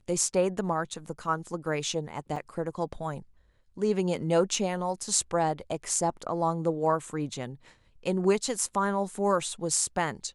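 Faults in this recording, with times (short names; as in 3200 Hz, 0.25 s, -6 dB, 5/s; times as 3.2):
2.36 gap 3.5 ms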